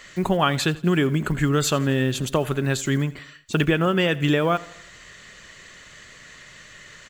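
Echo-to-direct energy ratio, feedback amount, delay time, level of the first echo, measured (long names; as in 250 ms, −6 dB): −18.5 dB, 51%, 84 ms, −20.0 dB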